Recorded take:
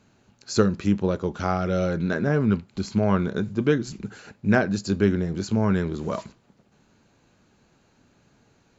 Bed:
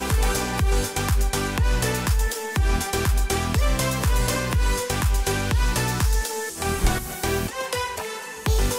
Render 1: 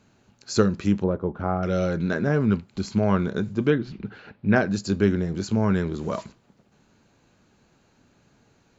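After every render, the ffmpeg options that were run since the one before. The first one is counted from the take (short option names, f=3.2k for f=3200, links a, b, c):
-filter_complex "[0:a]asettb=1/sr,asplit=3[a][b][c];[a]atrim=end=1.044[d];[b]atrim=start=1.04:end=1.63,asetpts=PTS-STARTPTS,afade=t=in:d=0.004:c=qsin,afade=t=out:st=0.586:d=0.004:c=qsin,lowpass=1.2k[e];[c]atrim=start=1.626[f];[d][e]acrossfade=d=0.004:c1=hsin:c2=qsin[g];[g][f]acrossfade=d=0.004:c1=qsin:c2=hsin,asettb=1/sr,asplit=3[h][i][j];[h]atrim=end=3.704[k];[i]atrim=start=3.7:end=4.56,asetpts=PTS-STARTPTS,afade=t=in:d=0.004:c=qsin,afade=t=out:st=0.856:d=0.004:c=qsin,lowpass=f=3.8k:w=0.5412,lowpass=f=3.8k:w=1.3066[l];[j]atrim=start=4.556[m];[k][l]acrossfade=d=0.004:c1=hsin:c2=qsin[n];[n][m]acrossfade=d=0.004:c1=qsin:c2=hsin"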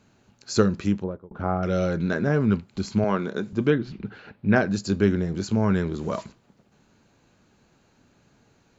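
-filter_complex "[0:a]asettb=1/sr,asplit=3[a][b][c];[a]atrim=end=3.044[d];[b]atrim=start=3.04:end=3.53,asetpts=PTS-STARTPTS,afade=t=in:d=0.004:c=qsin,afade=t=out:st=0.486:d=0.004:c=qsin,highpass=230[e];[c]atrim=start=3.526[f];[d][e]acrossfade=d=0.004:c1=hsin:c2=qsin[g];[g][f]acrossfade=d=0.004:c1=qsin:c2=hsin,asplit=2[h][i];[h]atrim=end=1.31,asetpts=PTS-STARTPTS,afade=t=out:st=0.81:d=0.5[j];[i]atrim=start=1.31,asetpts=PTS-STARTPTS,afade=t=in:d=0.004:c=hsin[k];[j][k]concat=n=2:v=0:a=1"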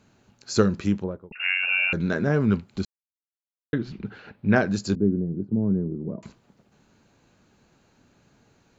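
-filter_complex "[0:a]asettb=1/sr,asplit=3[a][b][c];[a]atrim=end=1.324[d];[b]atrim=start=1.32:end=1.93,asetpts=PTS-STARTPTS,afade=t=in:d=0.004:c=qsin,afade=t=out:st=0.606:d=0.004:c=qsin,lowpass=f=2.5k:t=q:w=0.5098,lowpass=f=2.5k:t=q:w=0.6013,lowpass=f=2.5k:t=q:w=0.9,lowpass=f=2.5k:t=q:w=2.563,afreqshift=-2900[e];[c]atrim=start=1.926[f];[d][e]acrossfade=d=0.004:c1=hsin:c2=qsin[g];[g][f]acrossfade=d=0.004:c1=qsin:c2=hsin,asettb=1/sr,asplit=3[h][i][j];[h]atrim=end=4.954[k];[i]atrim=start=4.95:end=6.23,asetpts=PTS-STARTPTS,afade=t=in:d=0.004:c=qsin,afade=t=out:st=1.276:d=0.004:c=qsin,asuperpass=centerf=210:order=4:qfactor=0.76[l];[j]atrim=start=6.226[m];[k][l]acrossfade=d=0.004:c1=hsin:c2=qsin[n];[n][m]acrossfade=d=0.004:c1=qsin:c2=hsin,asplit=3[o][p][q];[o]atrim=end=2.85,asetpts=PTS-STARTPTS,afade=t=out:st=2.846:d=0.004:c=hsin[r];[p]atrim=start=2.85:end=3.73,asetpts=PTS-STARTPTS,volume=0[s];[q]atrim=start=3.73,asetpts=PTS-STARTPTS,afade=t=in:d=0.004:c=hsin[t];[r][s][t]concat=n=3:v=0:a=1"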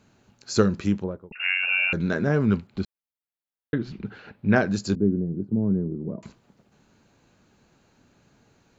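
-filter_complex "[0:a]asettb=1/sr,asplit=3[a][b][c];[a]atrim=end=2.674[d];[b]atrim=start=2.67:end=3.81,asetpts=PTS-STARTPTS,afade=t=in:d=0.004:c=qsin,afade=t=out:st=1.136:d=0.004:c=qsin,equalizer=f=6.7k:t=o:w=0.89:g=-12[e];[c]atrim=start=3.806[f];[d][e]acrossfade=d=0.004:c1=hsin:c2=qsin[g];[g][f]acrossfade=d=0.004:c1=qsin:c2=hsin"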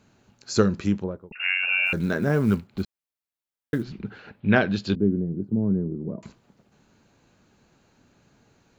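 -filter_complex "[0:a]asplit=3[a][b][c];[a]afade=t=out:st=1.85:d=0.02[d];[b]acrusher=bits=8:mode=log:mix=0:aa=0.000001,afade=t=in:st=1.85:d=0.02,afade=t=out:st=3.83:d=0.02[e];[c]afade=t=in:st=3.83:d=0.02[f];[d][e][f]amix=inputs=3:normalize=0,asettb=1/sr,asplit=3[g][h][i];[g]atrim=end=4.404[j];[h]atrim=start=4.4:end=5.34,asetpts=PTS-STARTPTS,afade=t=in:d=0.004:c=qsin,afade=t=out:st=0.936:d=0.004:c=qsin,lowpass=f=3.3k:t=q:w=3.7[k];[i]atrim=start=5.336[l];[j][k]acrossfade=d=0.004:c1=hsin:c2=qsin[m];[m][l]acrossfade=d=0.004:c1=qsin:c2=hsin"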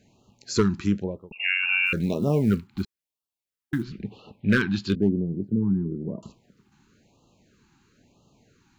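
-af "asoftclip=type=hard:threshold=-12dB,afftfilt=real='re*(1-between(b*sr/1024,520*pow(1900/520,0.5+0.5*sin(2*PI*1*pts/sr))/1.41,520*pow(1900/520,0.5+0.5*sin(2*PI*1*pts/sr))*1.41))':imag='im*(1-between(b*sr/1024,520*pow(1900/520,0.5+0.5*sin(2*PI*1*pts/sr))/1.41,520*pow(1900/520,0.5+0.5*sin(2*PI*1*pts/sr))*1.41))':win_size=1024:overlap=0.75"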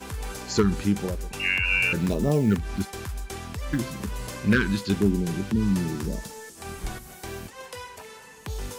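-filter_complex "[1:a]volume=-12.5dB[a];[0:a][a]amix=inputs=2:normalize=0"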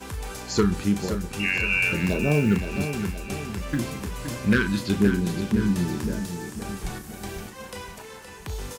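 -filter_complex "[0:a]asplit=2[a][b];[b]adelay=34,volume=-11dB[c];[a][c]amix=inputs=2:normalize=0,aecho=1:1:519|1038|1557|2076|2595|3114:0.355|0.174|0.0852|0.0417|0.0205|0.01"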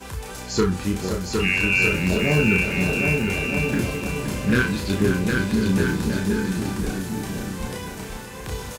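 -filter_complex "[0:a]asplit=2[a][b];[b]adelay=32,volume=-3.5dB[c];[a][c]amix=inputs=2:normalize=0,aecho=1:1:760|1254|1575|1784|1919:0.631|0.398|0.251|0.158|0.1"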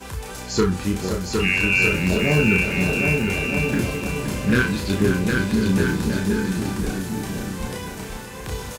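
-af "volume=1dB"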